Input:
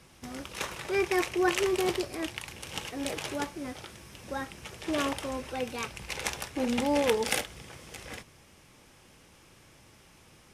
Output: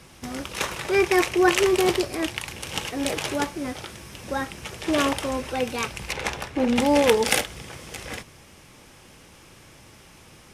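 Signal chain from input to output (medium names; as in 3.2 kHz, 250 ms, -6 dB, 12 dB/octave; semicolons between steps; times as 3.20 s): 6.12–6.76 s: treble shelf 4.6 kHz -12 dB; trim +7.5 dB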